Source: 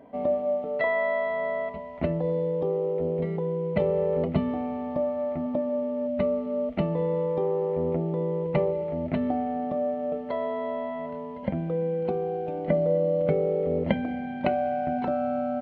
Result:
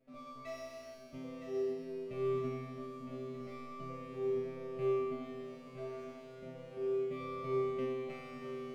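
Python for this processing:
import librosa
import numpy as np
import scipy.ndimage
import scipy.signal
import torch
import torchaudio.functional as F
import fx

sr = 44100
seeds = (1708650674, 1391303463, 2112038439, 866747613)

y = fx.lower_of_two(x, sr, delay_ms=0.37)
y = fx.stretch_vocoder(y, sr, factor=0.56)
y = fx.band_shelf(y, sr, hz=1100.0, db=-9.0, octaves=1.3)
y = fx.comb_fb(y, sr, f0_hz=130.0, decay_s=2.0, harmonics='all', damping=0.0, mix_pct=100)
y = fx.echo_feedback(y, sr, ms=962, feedback_pct=58, wet_db=-9)
y = fx.upward_expand(y, sr, threshold_db=-46.0, expansion=1.5)
y = F.gain(torch.from_numpy(y), 10.5).numpy()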